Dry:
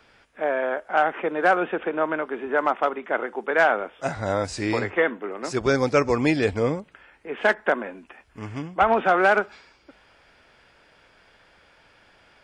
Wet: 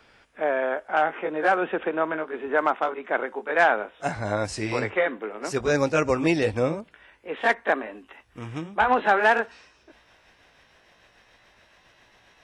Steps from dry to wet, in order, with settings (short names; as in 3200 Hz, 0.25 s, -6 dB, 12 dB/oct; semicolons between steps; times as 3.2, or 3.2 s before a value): gliding pitch shift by +2.5 st starting unshifted